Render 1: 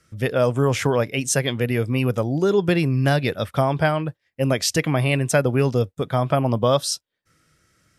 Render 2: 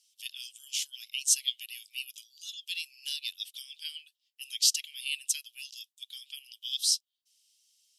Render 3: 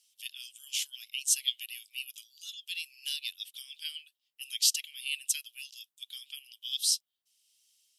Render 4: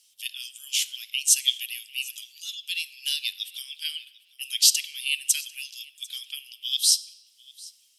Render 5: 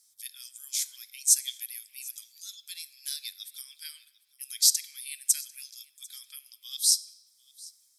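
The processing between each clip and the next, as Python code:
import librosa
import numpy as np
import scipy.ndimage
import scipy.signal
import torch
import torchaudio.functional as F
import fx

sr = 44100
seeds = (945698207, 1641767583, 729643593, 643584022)

y1 = scipy.signal.sosfilt(scipy.signal.cheby1(5, 1.0, 2900.0, 'highpass', fs=sr, output='sos'), x)
y2 = fx.peak_eq(y1, sr, hz=5400.0, db=-6.5, octaves=1.6)
y2 = y2 * (1.0 - 0.29 / 2.0 + 0.29 / 2.0 * np.cos(2.0 * np.pi * 1.3 * (np.arange(len(y2)) / sr)))
y2 = y2 * librosa.db_to_amplitude(4.5)
y3 = fx.echo_feedback(y2, sr, ms=746, feedback_pct=23, wet_db=-23.5)
y3 = fx.room_shoebox(y3, sr, seeds[0], volume_m3=1100.0, walls='mixed', distance_m=0.31)
y3 = y3 * librosa.db_to_amplitude(7.5)
y4 = fx.fixed_phaser(y3, sr, hz=1200.0, stages=4)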